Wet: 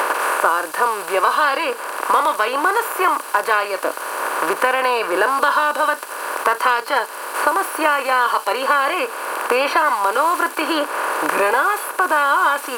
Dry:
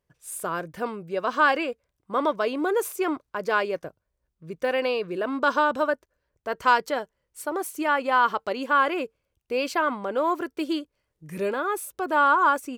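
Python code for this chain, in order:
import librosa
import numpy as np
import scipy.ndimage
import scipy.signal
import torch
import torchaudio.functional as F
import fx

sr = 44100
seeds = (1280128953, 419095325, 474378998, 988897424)

p1 = fx.bin_compress(x, sr, power=0.2)
p2 = scipy.signal.sosfilt(scipy.signal.butter(2, 560.0, 'highpass', fs=sr, output='sos'), p1)
p3 = fx.high_shelf(p2, sr, hz=5600.0, db=7.5)
p4 = p3 + fx.echo_wet_highpass(p3, sr, ms=88, feedback_pct=72, hz=4800.0, wet_db=-4, dry=0)
p5 = fx.noise_reduce_blind(p4, sr, reduce_db=13)
y = fx.band_squash(p5, sr, depth_pct=100)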